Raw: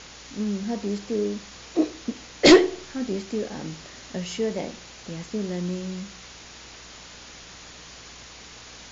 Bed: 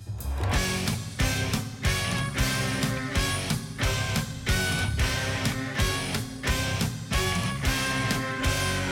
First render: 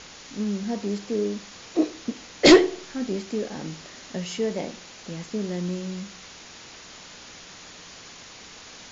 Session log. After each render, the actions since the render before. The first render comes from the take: de-hum 60 Hz, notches 2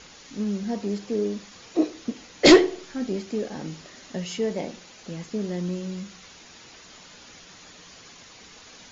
noise reduction 6 dB, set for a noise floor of -45 dBFS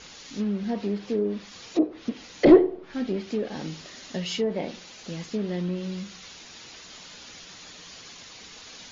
low-pass that closes with the level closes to 720 Hz, closed at -19.5 dBFS; dynamic bell 3.9 kHz, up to +7 dB, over -53 dBFS, Q 0.9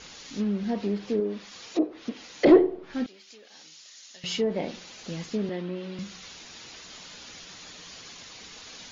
1.20–2.56 s: bass shelf 200 Hz -9 dB; 3.06–4.24 s: differentiator; 5.49–5.99 s: three-band isolator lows -21 dB, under 200 Hz, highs -15 dB, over 4.2 kHz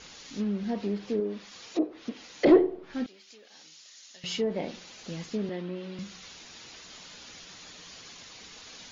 trim -2.5 dB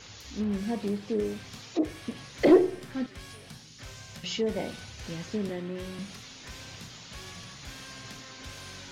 add bed -19.5 dB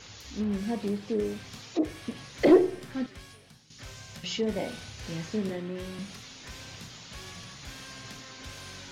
3.08–3.70 s: fade out quadratic, to -10 dB; 4.39–5.57 s: doubling 37 ms -7 dB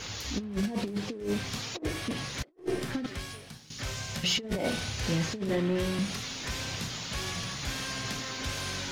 compressor with a negative ratio -34 dBFS, ratio -0.5; waveshaping leveller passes 1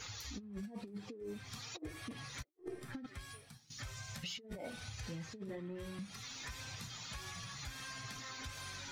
expander on every frequency bin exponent 1.5; compression 5:1, threshold -44 dBFS, peak gain reduction 16 dB

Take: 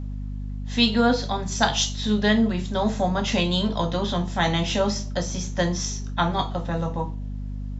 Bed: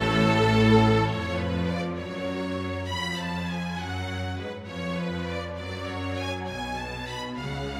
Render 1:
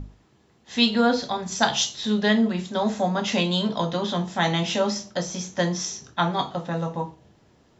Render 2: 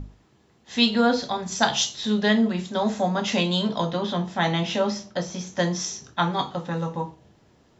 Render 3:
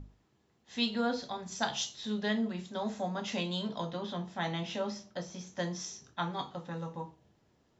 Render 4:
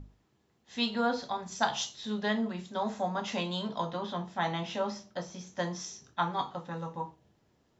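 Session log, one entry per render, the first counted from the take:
hum notches 50/100/150/200/250/300 Hz
3.91–5.47 s: distance through air 83 m; 6.22–7.04 s: band-stop 670 Hz, Q 8.3
trim -11.5 dB
dynamic bell 1 kHz, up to +7 dB, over -49 dBFS, Q 1.1

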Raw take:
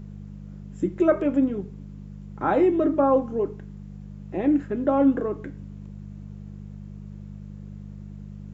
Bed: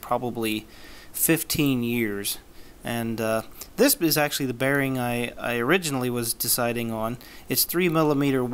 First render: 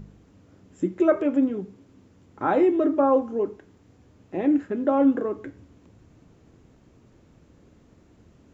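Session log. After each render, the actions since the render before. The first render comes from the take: de-hum 50 Hz, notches 4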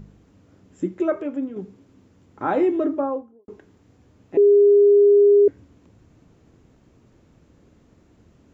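0.87–1.56 s: fade out quadratic, to -6.5 dB; 2.74–3.48 s: studio fade out; 4.37–5.48 s: bleep 407 Hz -10 dBFS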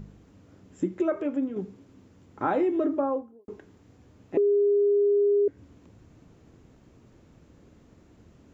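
compression 4:1, threshold -22 dBFS, peak gain reduction 8.5 dB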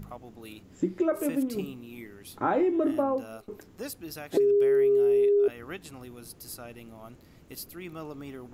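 add bed -19 dB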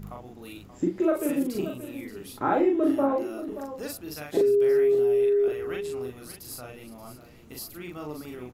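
doubling 40 ms -2 dB; delay 579 ms -12.5 dB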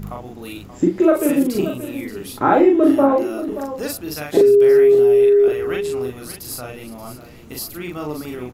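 trim +9.5 dB

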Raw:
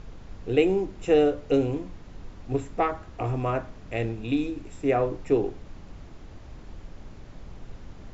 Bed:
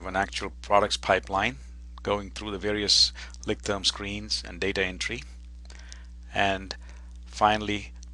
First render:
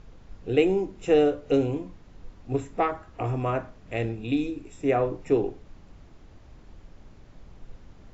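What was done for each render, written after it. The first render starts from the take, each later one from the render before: noise print and reduce 6 dB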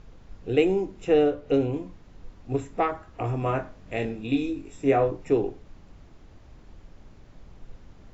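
1.04–1.74 s: distance through air 88 m; 3.40–5.11 s: doubling 22 ms -5 dB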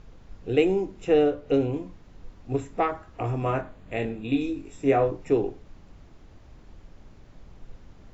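3.61–4.41 s: peaking EQ 5.5 kHz -12 dB 0.42 oct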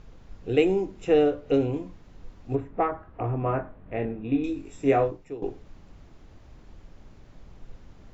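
2.55–4.44 s: low-pass 1.7 kHz; 5.00–5.42 s: fade out quadratic, to -16 dB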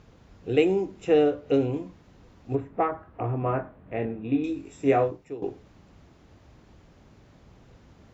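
high-pass 69 Hz 12 dB/octave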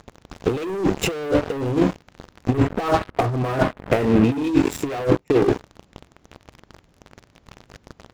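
waveshaping leveller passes 5; compressor with a negative ratio -18 dBFS, ratio -0.5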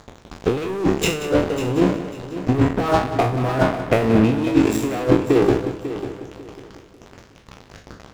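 spectral sustain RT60 0.40 s; on a send: multi-head delay 182 ms, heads first and third, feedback 41%, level -13 dB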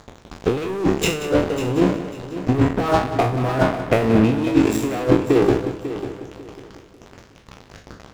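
no audible change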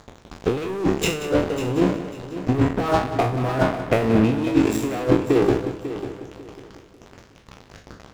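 trim -2 dB

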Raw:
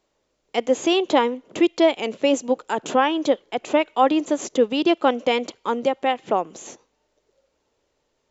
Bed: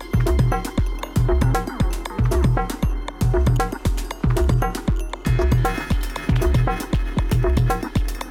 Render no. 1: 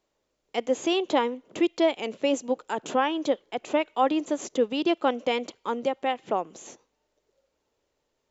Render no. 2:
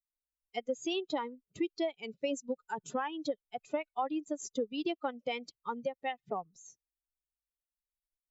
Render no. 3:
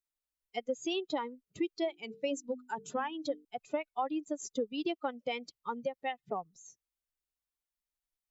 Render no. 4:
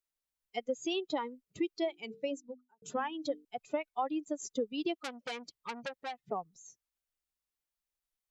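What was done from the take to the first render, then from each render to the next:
trim -5.5 dB
expander on every frequency bin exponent 2; compression 4:1, threshold -31 dBFS, peak gain reduction 10.5 dB
1.79–3.45 s: hum notches 50/100/150/200/250/300/350/400/450 Hz
2.07–2.82 s: studio fade out; 4.98–6.17 s: transformer saturation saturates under 3.7 kHz

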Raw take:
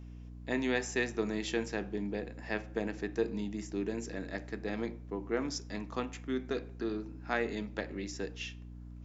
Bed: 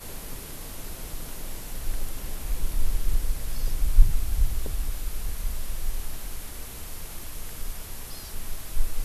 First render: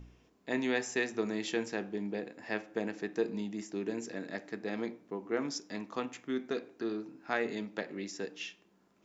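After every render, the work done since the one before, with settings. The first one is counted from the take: de-hum 60 Hz, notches 5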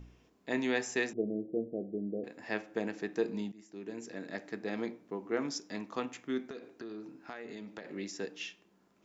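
1.13–2.24 s: steep low-pass 670 Hz 72 dB/octave; 3.52–4.43 s: fade in, from -19 dB; 6.44–7.85 s: compression, threshold -40 dBFS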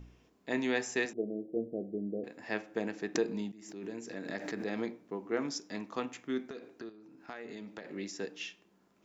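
1.05–1.56 s: high-pass 250 Hz 6 dB/octave; 3.15–5.00 s: swell ahead of each attack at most 62 dB/s; 6.89–7.29 s: compression 10:1, threshold -52 dBFS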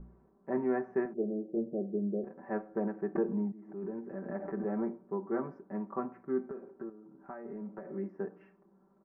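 inverse Chebyshev low-pass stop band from 3.3 kHz, stop band 50 dB; comb 5.2 ms, depth 85%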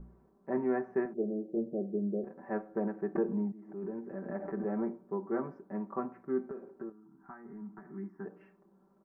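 6.92–8.26 s: static phaser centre 1.3 kHz, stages 4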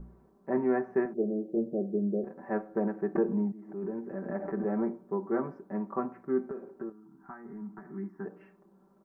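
trim +3.5 dB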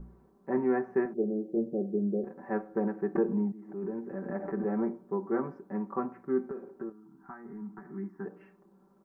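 band-stop 630 Hz, Q 12

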